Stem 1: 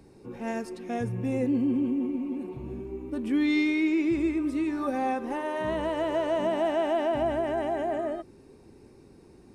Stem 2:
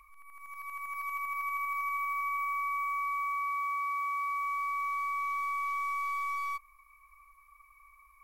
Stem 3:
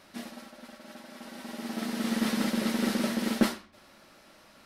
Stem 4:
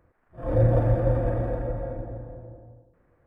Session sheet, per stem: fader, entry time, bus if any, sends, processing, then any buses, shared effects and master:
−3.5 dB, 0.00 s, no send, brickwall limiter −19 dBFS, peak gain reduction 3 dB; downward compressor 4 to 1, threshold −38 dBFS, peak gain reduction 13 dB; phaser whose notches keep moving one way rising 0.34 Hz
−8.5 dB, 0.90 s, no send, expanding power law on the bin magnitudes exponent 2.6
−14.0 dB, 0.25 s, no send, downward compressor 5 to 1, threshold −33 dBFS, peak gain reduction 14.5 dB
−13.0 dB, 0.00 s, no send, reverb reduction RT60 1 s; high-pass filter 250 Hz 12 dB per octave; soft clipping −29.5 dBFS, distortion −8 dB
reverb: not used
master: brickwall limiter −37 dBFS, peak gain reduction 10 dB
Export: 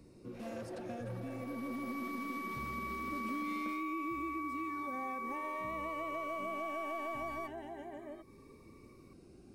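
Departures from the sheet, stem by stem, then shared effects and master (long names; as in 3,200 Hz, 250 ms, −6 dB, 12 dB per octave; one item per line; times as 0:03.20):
stem 2: missing expanding power law on the bin magnitudes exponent 2.6
master: missing brickwall limiter −37 dBFS, peak gain reduction 10 dB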